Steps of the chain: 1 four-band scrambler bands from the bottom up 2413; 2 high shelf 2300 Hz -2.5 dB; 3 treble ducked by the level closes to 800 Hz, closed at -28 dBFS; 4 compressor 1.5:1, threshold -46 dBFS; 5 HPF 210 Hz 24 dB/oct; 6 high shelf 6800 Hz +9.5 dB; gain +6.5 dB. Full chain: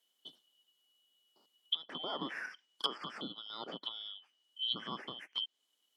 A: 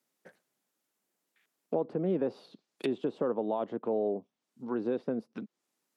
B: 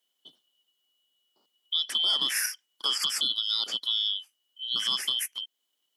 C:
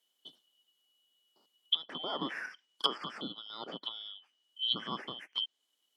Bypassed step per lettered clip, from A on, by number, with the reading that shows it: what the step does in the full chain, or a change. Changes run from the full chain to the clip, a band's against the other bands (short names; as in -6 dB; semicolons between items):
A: 1, 4 kHz band -33.5 dB; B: 3, 8 kHz band +29.0 dB; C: 4, momentary loudness spread change +4 LU